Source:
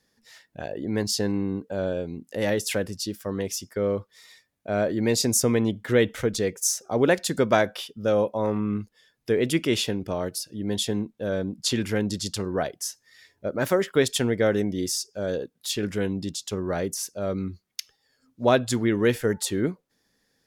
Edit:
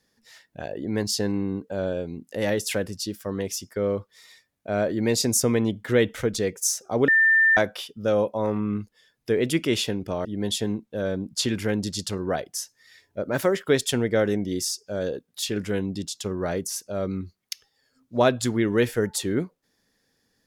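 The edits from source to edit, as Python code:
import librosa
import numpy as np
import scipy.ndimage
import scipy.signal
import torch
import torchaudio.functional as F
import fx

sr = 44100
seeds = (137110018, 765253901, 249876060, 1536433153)

y = fx.edit(x, sr, fx.bleep(start_s=7.08, length_s=0.49, hz=1790.0, db=-14.5),
    fx.cut(start_s=10.25, length_s=0.27), tone=tone)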